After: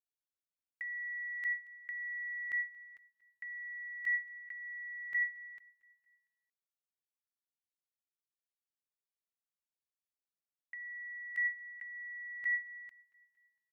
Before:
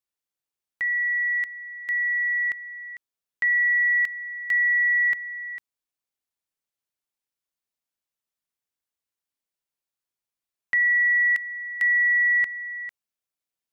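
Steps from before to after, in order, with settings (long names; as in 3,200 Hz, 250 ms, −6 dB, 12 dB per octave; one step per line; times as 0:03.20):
noise gate with hold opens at −23 dBFS
compressor whose output falls as the input rises −35 dBFS, ratio −1
on a send: repeating echo 229 ms, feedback 54%, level −23.5 dB
on the sum: level −5.5 dB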